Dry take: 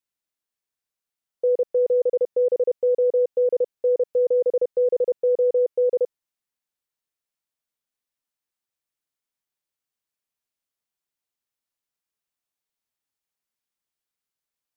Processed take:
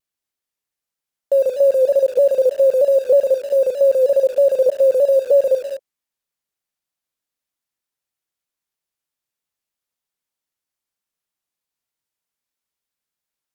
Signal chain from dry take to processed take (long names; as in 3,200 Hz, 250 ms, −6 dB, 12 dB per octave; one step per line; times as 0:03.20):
change of speed 1.09×
reverb whose tail is shaped and stops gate 250 ms rising, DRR 9.5 dB
in parallel at −7 dB: bit reduction 6 bits
on the sum: pitch modulation by a square or saw wave saw down 3.2 Hz, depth 100 cents
level +2.5 dB